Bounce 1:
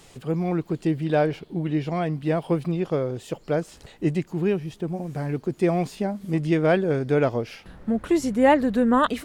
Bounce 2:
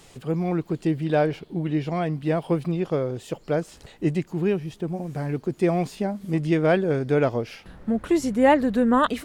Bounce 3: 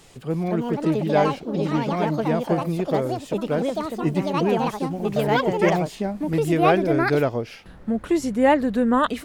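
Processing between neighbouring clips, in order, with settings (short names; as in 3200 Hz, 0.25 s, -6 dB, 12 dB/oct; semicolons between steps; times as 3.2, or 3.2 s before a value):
nothing audible
echoes that change speed 0.306 s, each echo +5 st, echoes 2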